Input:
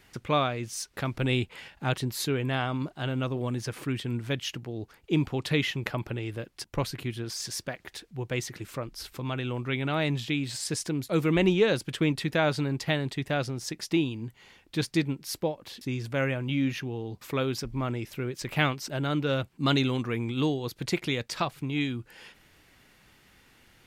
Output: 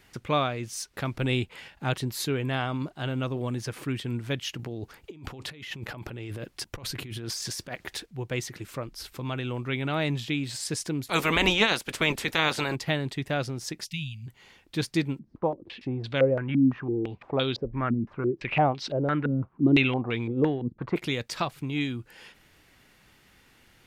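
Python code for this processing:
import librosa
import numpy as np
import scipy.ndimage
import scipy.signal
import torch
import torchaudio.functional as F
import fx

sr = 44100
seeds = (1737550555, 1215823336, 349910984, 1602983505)

y = fx.over_compress(x, sr, threshold_db=-38.0, ratio=-1.0, at=(4.59, 8.06))
y = fx.spec_clip(y, sr, under_db=21, at=(11.06, 12.74), fade=0.02)
y = fx.ellip_bandstop(y, sr, low_hz=160.0, high_hz=2500.0, order=3, stop_db=50, at=(13.84, 14.26), fade=0.02)
y = fx.filter_held_lowpass(y, sr, hz=5.9, low_hz=230.0, high_hz=3800.0, at=(15.19, 20.96))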